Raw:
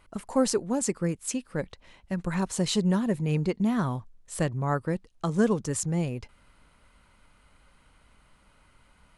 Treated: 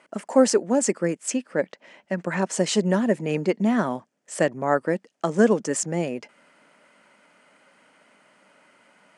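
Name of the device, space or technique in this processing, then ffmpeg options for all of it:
television speaker: -filter_complex "[0:a]highpass=f=210:w=0.5412,highpass=f=210:w=1.3066,equalizer=f=610:t=q:w=4:g=6,equalizer=f=1.1k:t=q:w=4:g=-4,equalizer=f=1.8k:t=q:w=4:g=4,equalizer=f=3.9k:t=q:w=4:g=-8,lowpass=f=8.7k:w=0.5412,lowpass=f=8.7k:w=1.3066,asettb=1/sr,asplit=3[a][b][c];[a]atrim=end=1.304[d];[b]atrim=start=1.3:end=2.46,asetpts=PTS-STARTPTS,afade=t=in:d=0.004:c=qsin,afade=t=out:st=1.156:d=0.004:c=qsin,highshelf=f=9.8k:g=-10[e];[c]atrim=start=2.456[f];[d][e]acrossfade=d=0.004:c1=hsin:c2=qsin[g];[g][f]acrossfade=d=0.004:c1=qsin:c2=hsin,volume=6dB"

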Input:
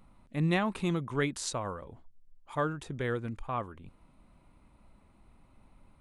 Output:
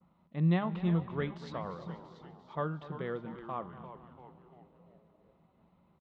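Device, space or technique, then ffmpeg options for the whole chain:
frequency-shifting delay pedal into a guitar cabinet: -filter_complex "[0:a]agate=range=-33dB:threshold=-58dB:ratio=3:detection=peak,bandreject=f=199.9:t=h:w=4,bandreject=f=399.8:t=h:w=4,bandreject=f=599.7:t=h:w=4,bandreject=f=799.6:t=h:w=4,bandreject=f=999.5:t=h:w=4,bandreject=f=1.1994k:t=h:w=4,bandreject=f=1.3993k:t=h:w=4,bandreject=f=1.5992k:t=h:w=4,bandreject=f=1.7991k:t=h:w=4,bandreject=f=1.999k:t=h:w=4,bandreject=f=2.1989k:t=h:w=4,bandreject=f=2.3988k:t=h:w=4,bandreject=f=2.5987k:t=h:w=4,bandreject=f=2.7986k:t=h:w=4,bandreject=f=2.9985k:t=h:w=4,bandreject=f=3.1984k:t=h:w=4,bandreject=f=3.3983k:t=h:w=4,bandreject=f=3.5982k:t=h:w=4,bandreject=f=3.7981k:t=h:w=4,bandreject=f=3.998k:t=h:w=4,bandreject=f=4.1979k:t=h:w=4,bandreject=f=4.3978k:t=h:w=4,bandreject=f=4.5977k:t=h:w=4,bandreject=f=4.7976k:t=h:w=4,bandreject=f=4.9975k:t=h:w=4,bandreject=f=5.1974k:t=h:w=4,bandreject=f=5.3973k:t=h:w=4,bandreject=f=5.5972k:t=h:w=4,asplit=7[a][b][c][d][e][f][g];[b]adelay=343,afreqshift=-130,volume=-11.5dB[h];[c]adelay=686,afreqshift=-260,volume=-16.5dB[i];[d]adelay=1029,afreqshift=-390,volume=-21.6dB[j];[e]adelay=1372,afreqshift=-520,volume=-26.6dB[k];[f]adelay=1715,afreqshift=-650,volume=-31.6dB[l];[g]adelay=2058,afreqshift=-780,volume=-36.7dB[m];[a][h][i][j][k][l][m]amix=inputs=7:normalize=0,highpass=110,equalizer=f=110:t=q:w=4:g=-9,equalizer=f=170:t=q:w=4:g=9,equalizer=f=270:t=q:w=4:g=-6,equalizer=f=1.6k:t=q:w=4:g=-5,equalizer=f=2.4k:t=q:w=4:g=-8,lowpass=f=3.6k:w=0.5412,lowpass=f=3.6k:w=1.3066,aecho=1:1:242|484|726|968:0.158|0.0713|0.0321|0.0144,adynamicequalizer=threshold=0.00355:dfrequency=2700:dqfactor=0.7:tfrequency=2700:tqfactor=0.7:attack=5:release=100:ratio=0.375:range=2:mode=cutabove:tftype=highshelf,volume=-3.5dB"

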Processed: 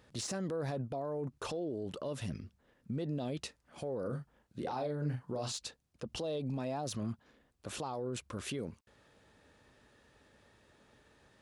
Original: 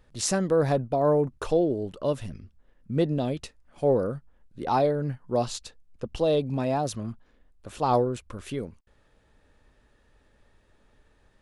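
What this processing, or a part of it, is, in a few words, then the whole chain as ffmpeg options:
broadcast voice chain: -filter_complex "[0:a]highpass=94,deesser=0.7,acompressor=threshold=-28dB:ratio=4,equalizer=f=5.3k:t=o:w=1.6:g=3,alimiter=level_in=7dB:limit=-24dB:level=0:latency=1:release=39,volume=-7dB,asettb=1/sr,asplit=3[a][b][c];[a]atrim=end=4.004[d];[b]atrim=start=4:end=5.52,asetpts=PTS-STARTPTS,afade=t=in:d=0.004:c=qsin,afade=t=out:st=1.516:d=0.004:c=qsin,asplit=2[e][f];[f]adelay=40,volume=-6.5dB[g];[e][g]amix=inputs=2:normalize=0,atrim=end_sample=67032[h];[c]atrim=start=5.516[i];[d][h]acrossfade=d=0.004:c1=hsin:c2=qsin[j];[j][i]acrossfade=d=0.004:c1=qsin:c2=hsin,volume=1dB"

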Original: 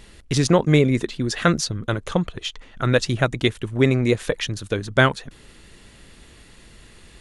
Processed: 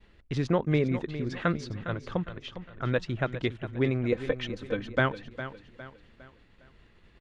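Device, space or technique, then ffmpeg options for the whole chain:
hearing-loss simulation: -filter_complex "[0:a]asettb=1/sr,asplit=3[a][b][c];[a]atrim=end=4.124[d];[b]atrim=start=4.12:end=4.99,asetpts=PTS-STARTPTS,afade=t=in:d=0.004:c=qsin,afade=t=out:st=0.866:d=0.004:c=qsin,aecho=1:1:3.9:0.91,atrim=end_sample=38367[e];[c]atrim=start=4.986[f];[d][e]acrossfade=d=0.004:c1=hsin:c2=qsin[g];[g][f]acrossfade=d=0.004:c1=qsin:c2=hsin,lowpass=2.8k,agate=range=-33dB:threshold=-44dB:ratio=3:detection=peak,aecho=1:1:407|814|1221|1628:0.251|0.1|0.0402|0.0161,volume=-9dB"

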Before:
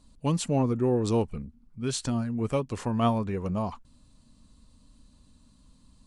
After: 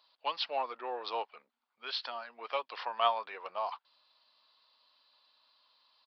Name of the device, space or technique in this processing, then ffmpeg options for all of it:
musical greeting card: -filter_complex "[0:a]aresample=11025,aresample=44100,highpass=f=710:w=0.5412,highpass=f=710:w=1.3066,equalizer=f=3.4k:t=o:w=0.51:g=4,asettb=1/sr,asplit=3[a][b][c];[a]atrim=end=1.054[d];[b]atrim=start=1.05:end=2.23,asetpts=PTS-STARTPTS,afade=t=in:d=0.004:c=qsin,afade=t=out:st=1.176:d=0.004:c=qsin,highshelf=f=4.6k:g=-6.5[e];[c]atrim=start=2.226[f];[d][e]acrossfade=d=0.004:c1=hsin:c2=qsin[g];[g][f]acrossfade=d=0.004:c1=qsin:c2=hsin,volume=1.5dB"

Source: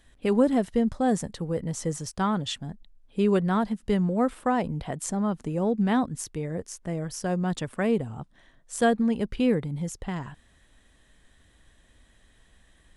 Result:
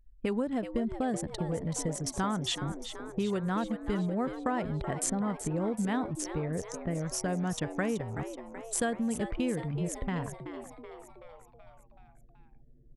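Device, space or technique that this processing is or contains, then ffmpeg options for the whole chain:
ASMR close-microphone chain: -filter_complex "[0:a]asettb=1/sr,asplit=3[a][b][c];[a]atrim=end=6.084[d];[b]atrim=start=6.08:end=6.74,asetpts=PTS-STARTPTS,afade=t=in:d=0.004:c=qsin,afade=t=out:st=0.656:d=0.004:c=qsin,lowpass=7.3k[e];[c]atrim=start=6.736[f];[d][e]acrossfade=d=0.004:c1=hsin:c2=qsin[g];[g][f]acrossfade=d=0.004:c1=qsin:c2=hsin,anlmdn=1,lowshelf=f=140:g=5,acompressor=threshold=-30dB:ratio=4,equalizer=f=1.8k:t=o:w=1.8:g=4,highshelf=f=7.9k:g=7,asplit=7[h][i][j][k][l][m][n];[i]adelay=378,afreqshift=110,volume=-10.5dB[o];[j]adelay=756,afreqshift=220,volume=-15.5dB[p];[k]adelay=1134,afreqshift=330,volume=-20.6dB[q];[l]adelay=1512,afreqshift=440,volume=-25.6dB[r];[m]adelay=1890,afreqshift=550,volume=-30.6dB[s];[n]adelay=2268,afreqshift=660,volume=-35.7dB[t];[h][o][p][q][r][s][t]amix=inputs=7:normalize=0"

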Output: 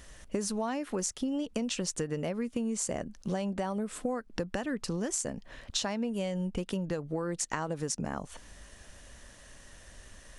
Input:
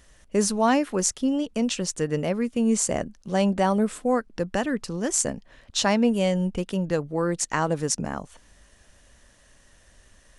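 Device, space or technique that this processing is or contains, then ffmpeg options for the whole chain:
serial compression, leveller first: -af "acompressor=threshold=-25dB:ratio=2,acompressor=threshold=-34dB:ratio=6,volume=4dB"

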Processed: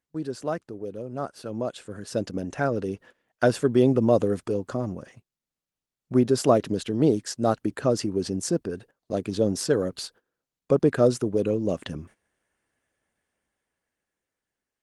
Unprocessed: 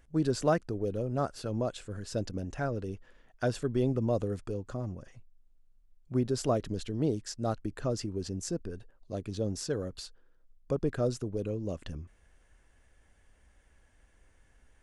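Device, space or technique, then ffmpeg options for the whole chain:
video call: -af "highpass=160,dynaudnorm=f=350:g=11:m=14dB,agate=range=-16dB:threshold=-45dB:ratio=16:detection=peak,volume=-2.5dB" -ar 48000 -c:a libopus -b:a 32k

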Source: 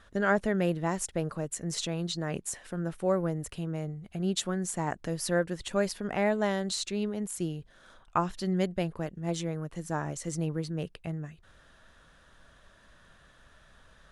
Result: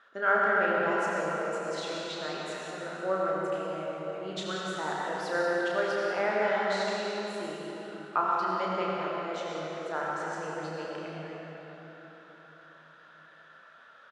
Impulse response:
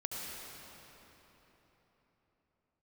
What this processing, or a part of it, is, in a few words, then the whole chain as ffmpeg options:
station announcement: -filter_complex "[0:a]highpass=460,lowpass=3.7k,equalizer=f=1.4k:t=o:w=0.3:g=8.5,aecho=1:1:32.07|192.4:0.562|0.282[a];[1:a]atrim=start_sample=2205[b];[a][b]afir=irnorm=-1:irlink=0"

